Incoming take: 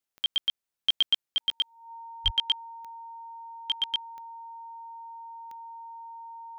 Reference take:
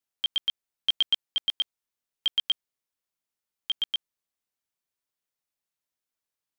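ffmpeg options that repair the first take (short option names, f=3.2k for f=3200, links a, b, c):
-filter_complex "[0:a]adeclick=t=4,bandreject=f=920:w=30,asplit=3[a][b][c];[a]afade=t=out:st=2.24:d=0.02[d];[b]highpass=f=140:w=0.5412,highpass=f=140:w=1.3066,afade=t=in:st=2.24:d=0.02,afade=t=out:st=2.36:d=0.02[e];[c]afade=t=in:st=2.36:d=0.02[f];[d][e][f]amix=inputs=3:normalize=0"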